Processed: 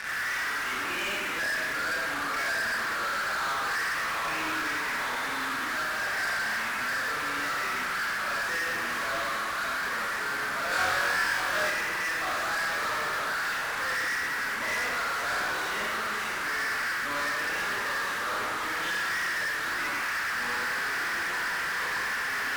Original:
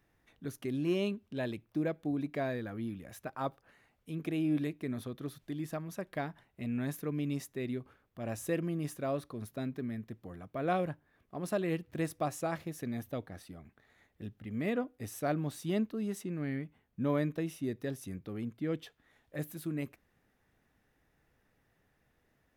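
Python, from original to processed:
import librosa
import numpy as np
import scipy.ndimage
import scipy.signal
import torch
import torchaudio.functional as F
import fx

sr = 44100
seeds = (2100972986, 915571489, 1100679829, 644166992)

p1 = x + 0.5 * 10.0 ** (-36.5 / 20.0) * np.sign(x)
p2 = fx.ladder_bandpass(p1, sr, hz=1800.0, resonance_pct=60)
p3 = fx.tilt_eq(p2, sr, slope=-2.0)
p4 = fx.rev_schroeder(p3, sr, rt60_s=1.5, comb_ms=28, drr_db=-8.5)
p5 = fx.echo_pitch(p4, sr, ms=86, semitones=-3, count=3, db_per_echo=-6.0)
p6 = fx.fuzz(p5, sr, gain_db=53.0, gate_db=-58.0)
p7 = p5 + (p6 * librosa.db_to_amplitude(-9.5))
p8 = fx.room_flutter(p7, sr, wall_m=3.9, rt60_s=0.42, at=(10.69, 11.7))
y = p8 * librosa.db_to_amplitude(-6.0)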